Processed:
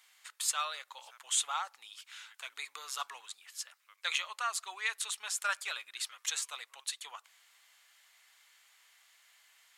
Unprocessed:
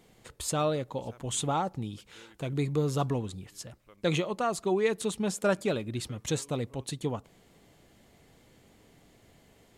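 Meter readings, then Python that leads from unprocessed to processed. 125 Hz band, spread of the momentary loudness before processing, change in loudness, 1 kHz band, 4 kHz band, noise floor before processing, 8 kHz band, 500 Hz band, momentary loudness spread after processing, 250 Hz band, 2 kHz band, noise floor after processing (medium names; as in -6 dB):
under -40 dB, 12 LU, -5.0 dB, -4.5 dB, +2.5 dB, -61 dBFS, +2.5 dB, -25.0 dB, 16 LU, under -40 dB, +2.0 dB, -72 dBFS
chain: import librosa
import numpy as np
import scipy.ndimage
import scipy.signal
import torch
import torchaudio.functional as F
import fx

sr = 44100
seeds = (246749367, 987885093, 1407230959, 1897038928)

y = scipy.signal.sosfilt(scipy.signal.butter(4, 1200.0, 'highpass', fs=sr, output='sos'), x)
y = F.gain(torch.from_numpy(y), 2.5).numpy()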